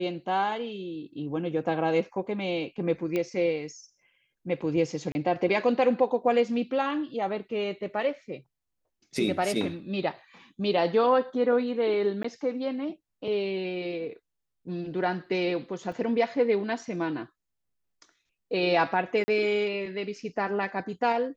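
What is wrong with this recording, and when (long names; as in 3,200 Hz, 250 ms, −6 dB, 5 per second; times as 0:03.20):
0:03.16: click −17 dBFS
0:05.12–0:05.15: drop-out 30 ms
0:12.23–0:12.24: drop-out
0:15.92: drop-out 3.5 ms
0:19.24–0:19.28: drop-out 40 ms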